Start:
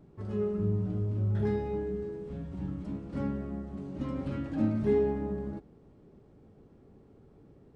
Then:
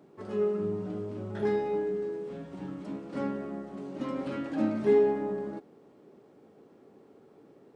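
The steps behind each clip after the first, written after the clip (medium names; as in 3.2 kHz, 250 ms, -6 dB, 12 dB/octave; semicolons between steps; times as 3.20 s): high-pass 310 Hz 12 dB/octave; trim +5.5 dB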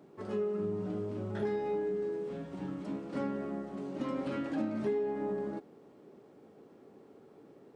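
compression 6:1, threshold -30 dBFS, peak gain reduction 11 dB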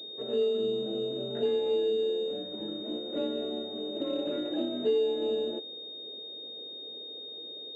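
ten-band graphic EQ 125 Hz -10 dB, 500 Hz +9 dB, 1 kHz -12 dB; frequency shift +26 Hz; class-D stage that switches slowly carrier 3.7 kHz; trim +1.5 dB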